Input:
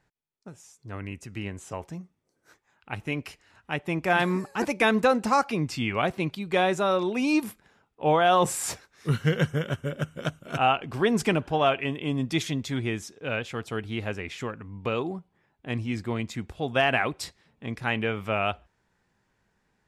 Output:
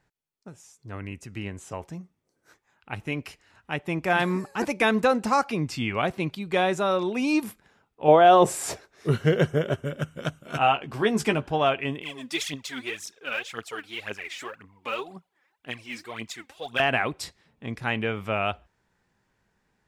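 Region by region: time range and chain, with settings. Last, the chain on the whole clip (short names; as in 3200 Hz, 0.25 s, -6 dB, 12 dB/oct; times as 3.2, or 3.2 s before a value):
8.08–9.85 high shelf 8800 Hz -3 dB + small resonant body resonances 400/620 Hz, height 9 dB, ringing for 20 ms
10.35–11.45 low shelf 180 Hz -4 dB + doubler 14 ms -7.5 dB
12.01–16.8 HPF 1200 Hz 6 dB/oct + phaser 1.9 Hz, delay 4.1 ms, feedback 72%
whole clip: dry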